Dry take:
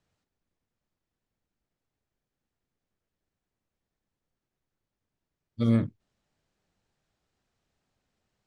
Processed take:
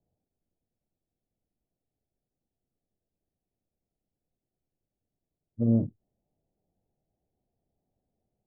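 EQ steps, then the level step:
elliptic low-pass filter 750 Hz, stop band 80 dB
0.0 dB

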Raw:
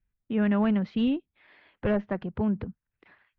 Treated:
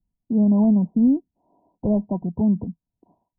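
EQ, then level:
Chebyshev low-pass with heavy ripple 1,000 Hz, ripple 9 dB
high-frequency loss of the air 460 metres
parametric band 170 Hz +5 dB 0.32 octaves
+9.0 dB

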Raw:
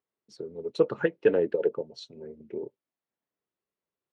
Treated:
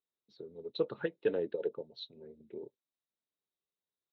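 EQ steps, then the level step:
low-pass with resonance 3,800 Hz, resonance Q 11
high-shelf EQ 2,900 Hz −11 dB
−9.0 dB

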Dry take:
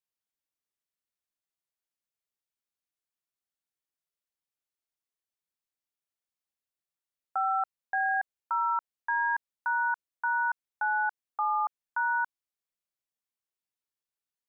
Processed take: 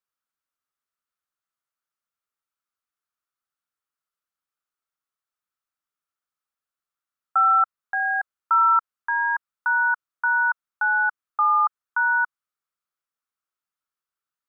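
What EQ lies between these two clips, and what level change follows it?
parametric band 1,300 Hz +15 dB 0.63 octaves
−1.5 dB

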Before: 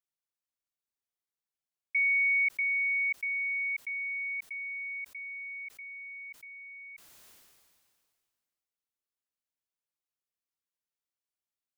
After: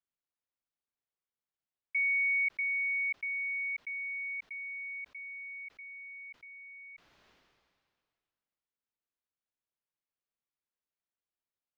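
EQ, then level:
high-frequency loss of the air 250 metres
0.0 dB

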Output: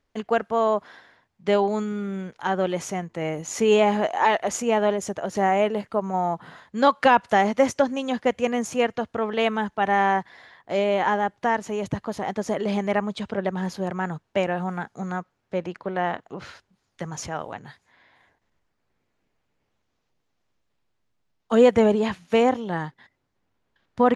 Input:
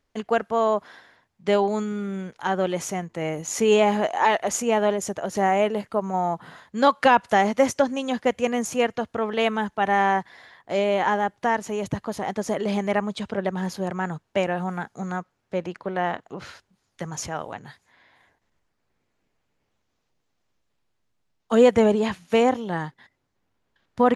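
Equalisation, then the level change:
high-shelf EQ 10,000 Hz −11 dB
0.0 dB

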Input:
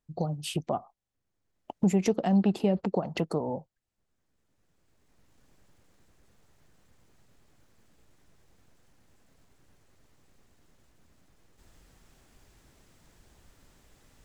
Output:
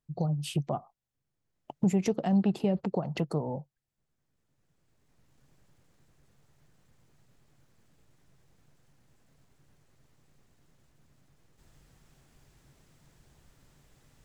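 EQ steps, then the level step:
parametric band 140 Hz +10.5 dB 0.37 octaves
−3.0 dB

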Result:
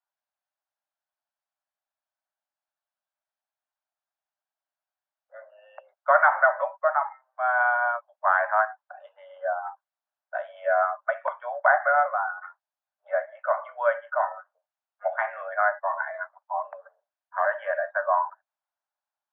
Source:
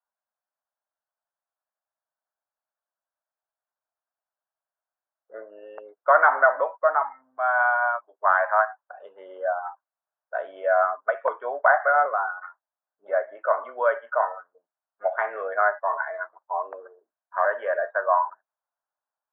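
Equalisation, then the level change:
Chebyshev high-pass with heavy ripple 560 Hz, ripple 3 dB
high-frequency loss of the air 130 metres
high-shelf EQ 2,800 Hz +7 dB
0.0 dB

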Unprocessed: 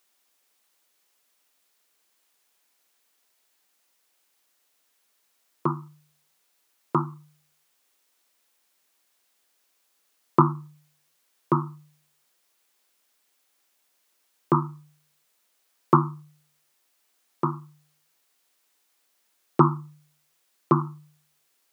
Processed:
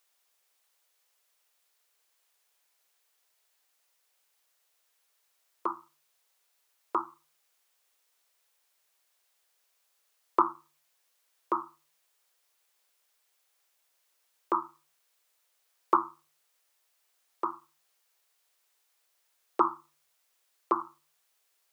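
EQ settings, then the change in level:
high-pass filter 410 Hz 24 dB per octave
−3.5 dB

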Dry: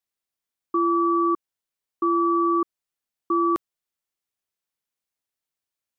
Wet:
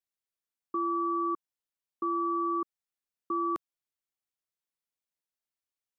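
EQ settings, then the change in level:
dynamic equaliser 360 Hz, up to −3 dB, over −33 dBFS, Q 1.1
−7.5 dB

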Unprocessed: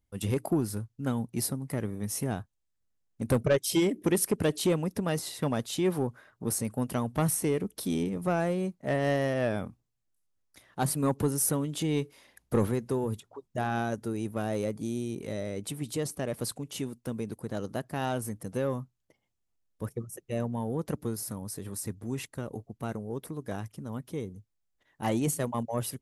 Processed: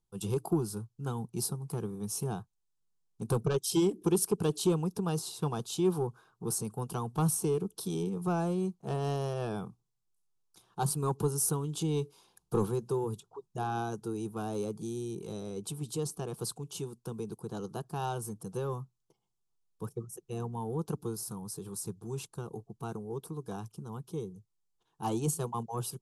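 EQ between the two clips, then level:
low-pass filter 11,000 Hz 12 dB per octave
phaser with its sweep stopped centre 390 Hz, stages 8
0.0 dB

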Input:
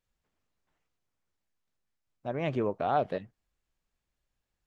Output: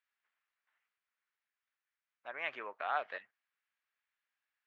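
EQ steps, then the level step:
four-pole ladder band-pass 2,200 Hz, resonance 30%
high-shelf EQ 2,700 Hz −10 dB
+16.0 dB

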